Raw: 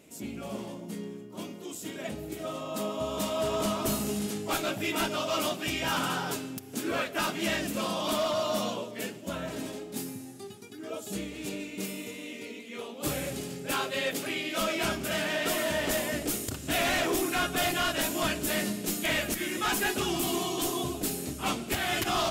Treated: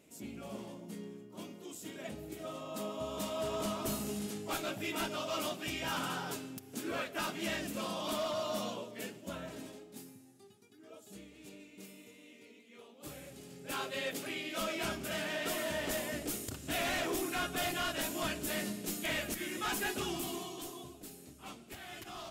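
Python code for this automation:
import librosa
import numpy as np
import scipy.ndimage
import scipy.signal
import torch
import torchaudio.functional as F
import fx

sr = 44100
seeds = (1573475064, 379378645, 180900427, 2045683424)

y = fx.gain(x, sr, db=fx.line((9.31, -7.0), (10.21, -16.0), (13.35, -16.0), (13.82, -7.0), (20.06, -7.0), (20.96, -18.0)))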